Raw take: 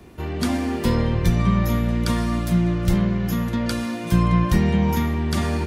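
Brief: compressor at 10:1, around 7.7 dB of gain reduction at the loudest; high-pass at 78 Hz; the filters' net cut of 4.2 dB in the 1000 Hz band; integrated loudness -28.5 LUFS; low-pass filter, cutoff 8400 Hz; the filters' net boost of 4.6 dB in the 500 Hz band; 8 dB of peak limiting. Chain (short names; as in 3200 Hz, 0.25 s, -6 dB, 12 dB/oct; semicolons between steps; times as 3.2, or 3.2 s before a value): HPF 78 Hz; LPF 8400 Hz; bell 500 Hz +7.5 dB; bell 1000 Hz -7.5 dB; compressor 10:1, threshold -21 dBFS; gain +0.5 dB; limiter -20 dBFS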